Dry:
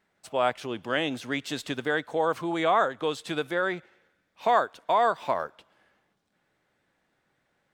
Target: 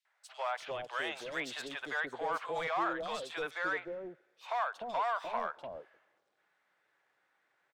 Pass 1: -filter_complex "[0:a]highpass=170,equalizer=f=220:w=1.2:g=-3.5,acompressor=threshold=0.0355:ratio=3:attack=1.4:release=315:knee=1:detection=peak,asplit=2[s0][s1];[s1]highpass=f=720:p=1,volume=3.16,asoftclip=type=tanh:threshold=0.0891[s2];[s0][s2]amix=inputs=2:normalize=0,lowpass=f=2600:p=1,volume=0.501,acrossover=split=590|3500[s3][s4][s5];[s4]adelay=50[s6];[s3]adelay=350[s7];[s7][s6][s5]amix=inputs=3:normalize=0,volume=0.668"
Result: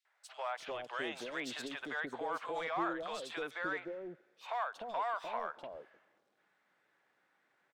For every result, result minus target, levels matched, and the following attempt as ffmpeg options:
compression: peak gain reduction +5.5 dB; 250 Hz band +4.5 dB
-filter_complex "[0:a]highpass=170,equalizer=f=220:w=1.2:g=-3.5,acompressor=threshold=0.0841:ratio=3:attack=1.4:release=315:knee=1:detection=peak,asplit=2[s0][s1];[s1]highpass=f=720:p=1,volume=3.16,asoftclip=type=tanh:threshold=0.0891[s2];[s0][s2]amix=inputs=2:normalize=0,lowpass=f=2600:p=1,volume=0.501,acrossover=split=590|3500[s3][s4][s5];[s4]adelay=50[s6];[s3]adelay=350[s7];[s7][s6][s5]amix=inputs=3:normalize=0,volume=0.668"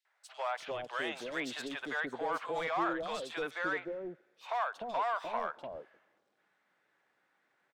250 Hz band +4.5 dB
-filter_complex "[0:a]highpass=170,equalizer=f=220:w=1.2:g=-12,acompressor=threshold=0.0841:ratio=3:attack=1.4:release=315:knee=1:detection=peak,asplit=2[s0][s1];[s1]highpass=f=720:p=1,volume=3.16,asoftclip=type=tanh:threshold=0.0891[s2];[s0][s2]amix=inputs=2:normalize=0,lowpass=f=2600:p=1,volume=0.501,acrossover=split=590|3500[s3][s4][s5];[s4]adelay=50[s6];[s3]adelay=350[s7];[s7][s6][s5]amix=inputs=3:normalize=0,volume=0.668"

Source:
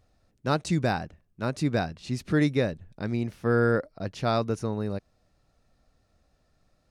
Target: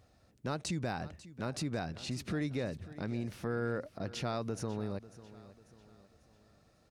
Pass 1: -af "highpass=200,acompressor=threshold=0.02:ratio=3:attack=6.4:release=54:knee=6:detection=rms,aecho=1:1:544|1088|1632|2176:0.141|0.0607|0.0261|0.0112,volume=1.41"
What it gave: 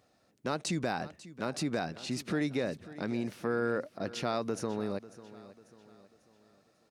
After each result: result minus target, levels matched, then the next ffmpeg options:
125 Hz band -5.5 dB; compression: peak gain reduction -4.5 dB
-af "highpass=62,acompressor=threshold=0.02:ratio=3:attack=6.4:release=54:knee=6:detection=rms,aecho=1:1:544|1088|1632|2176:0.141|0.0607|0.0261|0.0112,volume=1.41"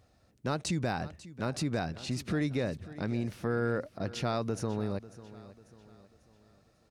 compression: peak gain reduction -4.5 dB
-af "highpass=62,acompressor=threshold=0.00944:ratio=3:attack=6.4:release=54:knee=6:detection=rms,aecho=1:1:544|1088|1632|2176:0.141|0.0607|0.0261|0.0112,volume=1.41"

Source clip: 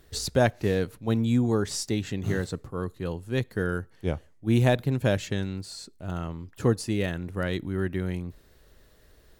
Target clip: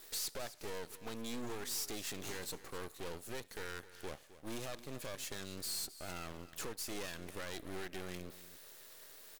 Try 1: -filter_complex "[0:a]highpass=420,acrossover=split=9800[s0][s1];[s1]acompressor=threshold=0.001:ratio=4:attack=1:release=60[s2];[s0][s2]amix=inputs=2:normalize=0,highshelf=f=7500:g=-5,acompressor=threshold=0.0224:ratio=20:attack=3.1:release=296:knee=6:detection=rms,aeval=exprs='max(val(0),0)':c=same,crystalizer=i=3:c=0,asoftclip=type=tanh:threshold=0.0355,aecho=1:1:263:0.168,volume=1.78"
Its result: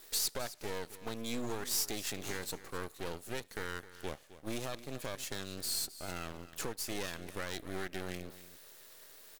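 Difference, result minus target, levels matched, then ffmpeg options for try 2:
saturation: distortion -9 dB
-filter_complex "[0:a]highpass=420,acrossover=split=9800[s0][s1];[s1]acompressor=threshold=0.001:ratio=4:attack=1:release=60[s2];[s0][s2]amix=inputs=2:normalize=0,highshelf=f=7500:g=-5,acompressor=threshold=0.0224:ratio=20:attack=3.1:release=296:knee=6:detection=rms,aeval=exprs='max(val(0),0)':c=same,crystalizer=i=3:c=0,asoftclip=type=tanh:threshold=0.0106,aecho=1:1:263:0.168,volume=1.78"

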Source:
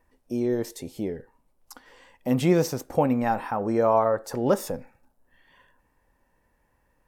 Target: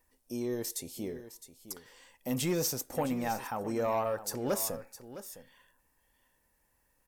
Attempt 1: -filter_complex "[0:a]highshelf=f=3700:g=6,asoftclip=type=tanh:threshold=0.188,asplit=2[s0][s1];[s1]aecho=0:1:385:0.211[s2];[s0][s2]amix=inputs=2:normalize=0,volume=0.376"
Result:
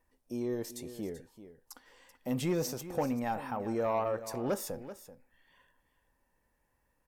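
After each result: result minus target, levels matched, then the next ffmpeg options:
echo 276 ms early; 8 kHz band -6.5 dB
-filter_complex "[0:a]highshelf=f=3700:g=6,asoftclip=type=tanh:threshold=0.188,asplit=2[s0][s1];[s1]aecho=0:1:661:0.211[s2];[s0][s2]amix=inputs=2:normalize=0,volume=0.376"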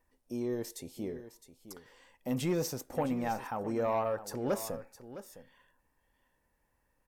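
8 kHz band -6.5 dB
-filter_complex "[0:a]highshelf=f=3700:g=17,asoftclip=type=tanh:threshold=0.188,asplit=2[s0][s1];[s1]aecho=0:1:661:0.211[s2];[s0][s2]amix=inputs=2:normalize=0,volume=0.376"

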